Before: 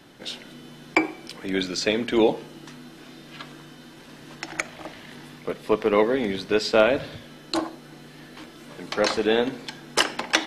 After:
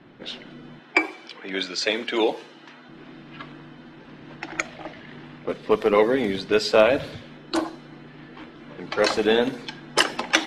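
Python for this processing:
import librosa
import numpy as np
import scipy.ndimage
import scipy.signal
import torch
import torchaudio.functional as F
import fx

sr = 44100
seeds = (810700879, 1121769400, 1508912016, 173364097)

y = fx.spec_quant(x, sr, step_db=15)
y = fx.weighting(y, sr, curve='A', at=(0.79, 2.89))
y = fx.env_lowpass(y, sr, base_hz=2100.0, full_db=-21.0)
y = F.gain(torch.from_numpy(y), 2.0).numpy()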